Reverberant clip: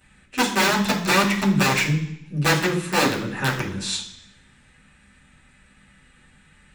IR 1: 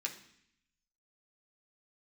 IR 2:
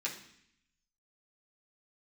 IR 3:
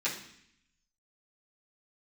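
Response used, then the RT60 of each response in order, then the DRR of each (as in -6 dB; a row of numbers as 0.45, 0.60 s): 3; 0.65, 0.65, 0.65 s; -0.5, -5.5, -10.5 dB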